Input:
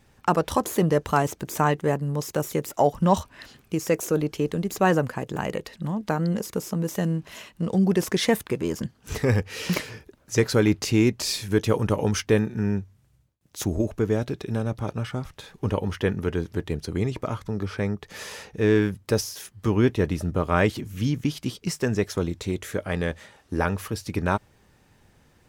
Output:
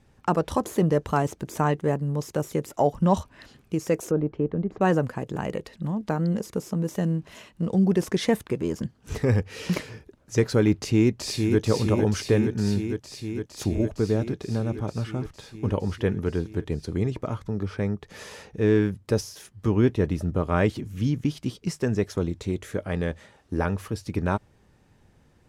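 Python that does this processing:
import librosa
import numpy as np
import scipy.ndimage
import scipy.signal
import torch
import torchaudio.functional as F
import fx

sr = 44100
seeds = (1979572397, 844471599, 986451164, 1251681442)

y = fx.lowpass(x, sr, hz=1400.0, slope=12, at=(4.11, 4.81))
y = fx.echo_throw(y, sr, start_s=10.79, length_s=0.82, ms=460, feedback_pct=80, wet_db=-5.0)
y = scipy.signal.sosfilt(scipy.signal.butter(2, 12000.0, 'lowpass', fs=sr, output='sos'), y)
y = fx.tilt_shelf(y, sr, db=3.0, hz=790.0)
y = y * 10.0 ** (-2.5 / 20.0)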